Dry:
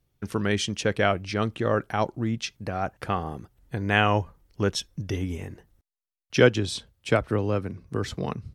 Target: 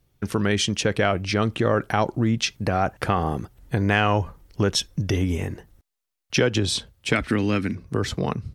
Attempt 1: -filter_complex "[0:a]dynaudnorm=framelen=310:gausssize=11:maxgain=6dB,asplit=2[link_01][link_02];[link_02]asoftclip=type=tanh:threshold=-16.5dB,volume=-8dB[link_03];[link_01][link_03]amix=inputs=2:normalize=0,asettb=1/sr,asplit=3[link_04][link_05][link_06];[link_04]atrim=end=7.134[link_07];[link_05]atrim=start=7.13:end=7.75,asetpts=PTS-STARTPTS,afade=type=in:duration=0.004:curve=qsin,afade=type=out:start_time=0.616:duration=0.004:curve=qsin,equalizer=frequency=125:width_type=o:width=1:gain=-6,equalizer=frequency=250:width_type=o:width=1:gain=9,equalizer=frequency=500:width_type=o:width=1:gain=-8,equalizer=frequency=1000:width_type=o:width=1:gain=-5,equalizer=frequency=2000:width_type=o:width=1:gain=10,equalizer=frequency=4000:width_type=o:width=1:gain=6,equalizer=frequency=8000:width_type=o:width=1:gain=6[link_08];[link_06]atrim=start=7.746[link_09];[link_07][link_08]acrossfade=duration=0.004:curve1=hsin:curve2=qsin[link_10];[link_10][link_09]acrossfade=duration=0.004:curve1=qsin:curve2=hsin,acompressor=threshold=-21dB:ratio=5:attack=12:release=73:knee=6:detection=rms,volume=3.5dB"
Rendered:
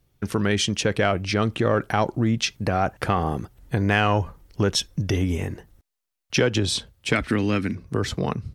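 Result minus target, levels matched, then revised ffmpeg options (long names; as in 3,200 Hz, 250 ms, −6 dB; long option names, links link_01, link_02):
soft clipping: distortion +10 dB
-filter_complex "[0:a]dynaudnorm=framelen=310:gausssize=11:maxgain=6dB,asplit=2[link_01][link_02];[link_02]asoftclip=type=tanh:threshold=-6.5dB,volume=-8dB[link_03];[link_01][link_03]amix=inputs=2:normalize=0,asettb=1/sr,asplit=3[link_04][link_05][link_06];[link_04]atrim=end=7.134[link_07];[link_05]atrim=start=7.13:end=7.75,asetpts=PTS-STARTPTS,afade=type=in:duration=0.004:curve=qsin,afade=type=out:start_time=0.616:duration=0.004:curve=qsin,equalizer=frequency=125:width_type=o:width=1:gain=-6,equalizer=frequency=250:width_type=o:width=1:gain=9,equalizer=frequency=500:width_type=o:width=1:gain=-8,equalizer=frequency=1000:width_type=o:width=1:gain=-5,equalizer=frequency=2000:width_type=o:width=1:gain=10,equalizer=frequency=4000:width_type=o:width=1:gain=6,equalizer=frequency=8000:width_type=o:width=1:gain=6[link_08];[link_06]atrim=start=7.746[link_09];[link_07][link_08]acrossfade=duration=0.004:curve1=hsin:curve2=qsin[link_10];[link_10][link_09]acrossfade=duration=0.004:curve1=qsin:curve2=hsin,acompressor=threshold=-21dB:ratio=5:attack=12:release=73:knee=6:detection=rms,volume=3.5dB"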